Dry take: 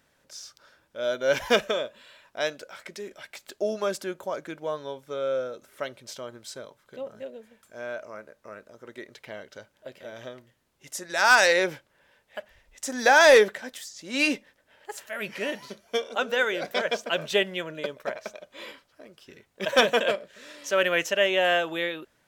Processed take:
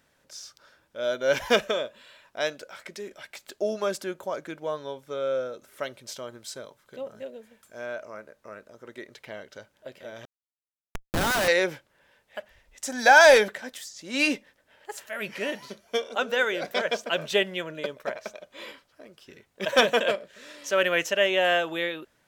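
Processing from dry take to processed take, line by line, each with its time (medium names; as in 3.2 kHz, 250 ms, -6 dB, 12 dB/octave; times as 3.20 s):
5.67–7.86 s: treble shelf 5.4 kHz +3.5 dB
10.25–11.48 s: Schmitt trigger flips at -23 dBFS
12.87–13.48 s: comb 1.3 ms, depth 51%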